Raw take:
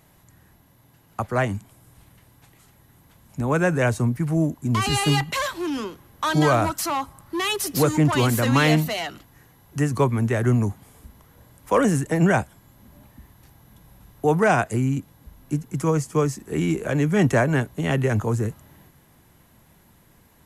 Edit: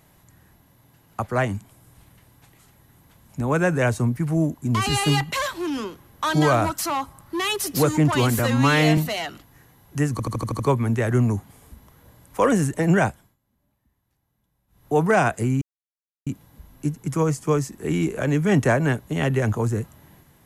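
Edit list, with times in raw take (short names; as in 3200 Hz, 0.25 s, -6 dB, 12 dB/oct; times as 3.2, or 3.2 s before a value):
8.39–8.78 stretch 1.5×
9.92 stutter 0.08 s, 7 plays
12.41–14.29 dip -22 dB, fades 0.28 s
14.94 insert silence 0.65 s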